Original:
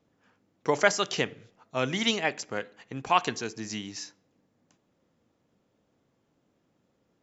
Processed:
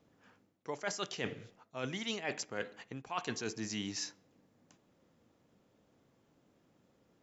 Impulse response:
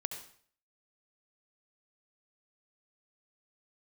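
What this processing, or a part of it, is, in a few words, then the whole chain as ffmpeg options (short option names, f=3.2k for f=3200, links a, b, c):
compression on the reversed sound: -af "areverse,acompressor=threshold=-36dB:ratio=12,areverse,volume=1.5dB"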